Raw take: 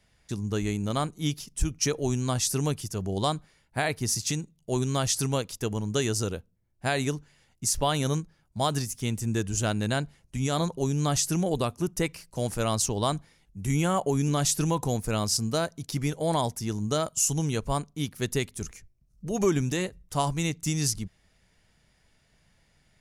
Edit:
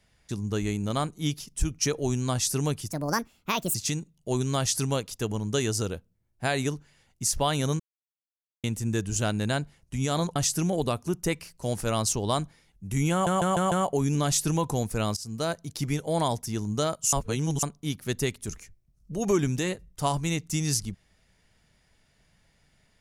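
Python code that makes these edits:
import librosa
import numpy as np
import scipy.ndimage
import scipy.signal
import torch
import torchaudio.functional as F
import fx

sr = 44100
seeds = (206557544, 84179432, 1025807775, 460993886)

y = fx.edit(x, sr, fx.speed_span(start_s=2.92, length_s=1.24, speed=1.5),
    fx.silence(start_s=8.21, length_s=0.84),
    fx.cut(start_s=10.77, length_s=0.32),
    fx.stutter(start_s=13.85, slice_s=0.15, count=5),
    fx.fade_in_from(start_s=15.3, length_s=0.36, floor_db=-20.0),
    fx.reverse_span(start_s=17.26, length_s=0.5), tone=tone)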